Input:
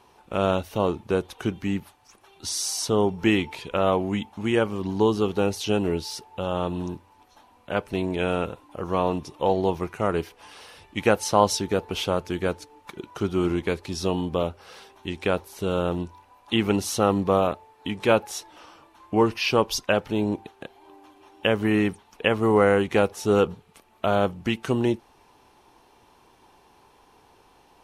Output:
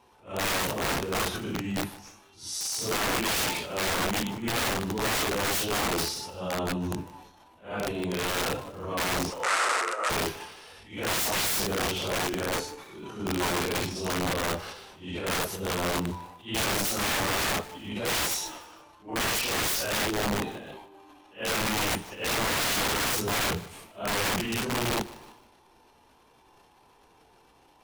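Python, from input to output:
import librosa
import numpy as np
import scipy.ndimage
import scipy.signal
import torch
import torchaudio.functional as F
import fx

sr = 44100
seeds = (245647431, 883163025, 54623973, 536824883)

p1 = fx.phase_scramble(x, sr, seeds[0], window_ms=200)
p2 = fx.transient(p1, sr, attack_db=-9, sustain_db=11)
p3 = (np.mod(10.0 ** (19.5 / 20.0) * p2 + 1.0, 2.0) - 1.0) / 10.0 ** (19.5 / 20.0)
p4 = fx.cabinet(p3, sr, low_hz=440.0, low_slope=24, high_hz=9900.0, hz=(790.0, 1300.0, 2000.0, 3300.0, 8200.0), db=(-3, 10, 4, -3, 5), at=(9.3, 10.1))
p5 = p4 + fx.echo_feedback(p4, sr, ms=152, feedback_pct=36, wet_db=-19, dry=0)
y = F.gain(torch.from_numpy(p5), -3.0).numpy()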